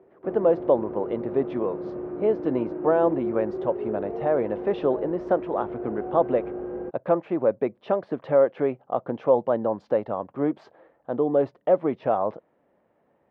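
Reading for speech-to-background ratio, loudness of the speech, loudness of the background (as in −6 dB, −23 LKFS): 8.0 dB, −25.5 LKFS, −33.5 LKFS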